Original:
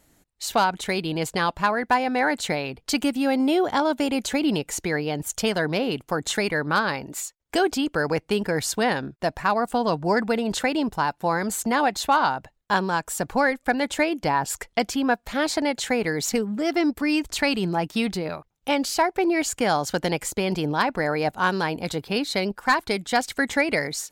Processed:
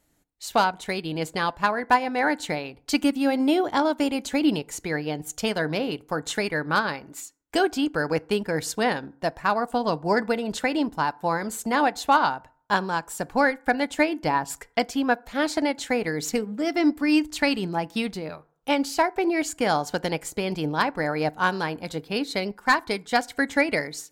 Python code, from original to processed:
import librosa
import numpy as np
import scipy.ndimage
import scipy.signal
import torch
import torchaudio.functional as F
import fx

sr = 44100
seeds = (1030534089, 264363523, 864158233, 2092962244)

y = fx.rev_fdn(x, sr, rt60_s=0.54, lf_ratio=0.95, hf_ratio=0.45, size_ms=20.0, drr_db=15.0)
y = fx.upward_expand(y, sr, threshold_db=-34.0, expansion=1.5)
y = y * librosa.db_to_amplitude(1.5)